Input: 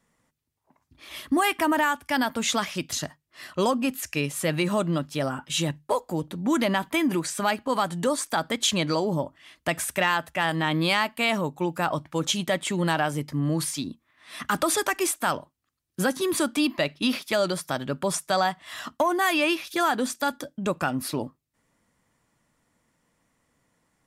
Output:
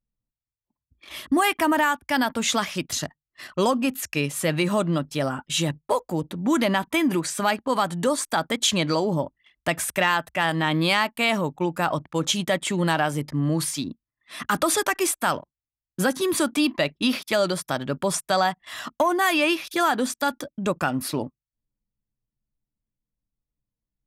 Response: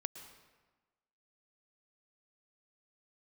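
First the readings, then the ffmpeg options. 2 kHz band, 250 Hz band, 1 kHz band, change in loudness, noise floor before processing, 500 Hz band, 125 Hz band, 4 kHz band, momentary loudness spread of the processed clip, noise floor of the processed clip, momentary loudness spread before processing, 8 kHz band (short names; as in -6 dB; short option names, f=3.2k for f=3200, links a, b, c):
+2.0 dB, +2.0 dB, +2.0 dB, +2.0 dB, -76 dBFS, +2.0 dB, +2.0 dB, +2.0 dB, 8 LU, under -85 dBFS, 8 LU, +2.0 dB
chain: -af "anlmdn=0.0631,volume=2dB"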